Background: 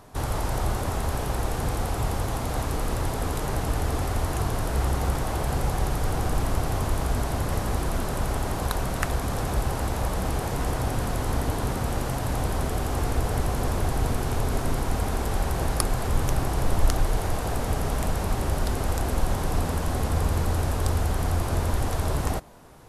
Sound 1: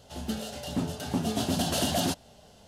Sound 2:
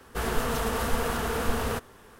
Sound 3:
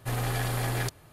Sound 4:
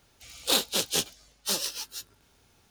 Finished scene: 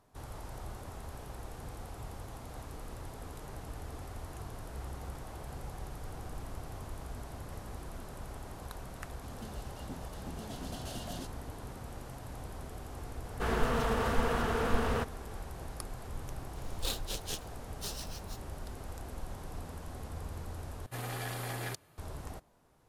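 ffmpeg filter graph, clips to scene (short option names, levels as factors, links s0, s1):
-filter_complex "[0:a]volume=0.133[s0];[2:a]aemphasis=mode=reproduction:type=50kf[s1];[3:a]lowshelf=f=87:g=-11[s2];[s0]asplit=2[s3][s4];[s3]atrim=end=20.864[s5];[s2]atrim=end=1.12,asetpts=PTS-STARTPTS,volume=0.447[s6];[s4]atrim=start=21.976[s7];[1:a]atrim=end=2.67,asetpts=PTS-STARTPTS,volume=0.15,afade=t=in:d=0.004:c=hsin,afade=t=out:st=2.666:d=0.004:c=hsin,adelay=9130[s8];[s1]atrim=end=2.19,asetpts=PTS-STARTPTS,volume=0.794,afade=t=in:d=0.004:c=hsin,afade=t=out:st=2.186:d=0.004:c=hsin,adelay=13250[s9];[4:a]atrim=end=2.7,asetpts=PTS-STARTPTS,volume=0.224,afade=t=in:d=0.004:c=hsin,afade=t=out:st=2.696:d=0.004:c=hsin,adelay=16350[s10];[s5][s6]acrossfade=d=0.004:c1=hsin:c2=hsin[s11];[s11][s7]acrossfade=d=0.004:c1=hsin:c2=hsin[s12];[s12][s8][s9][s10]amix=inputs=4:normalize=0"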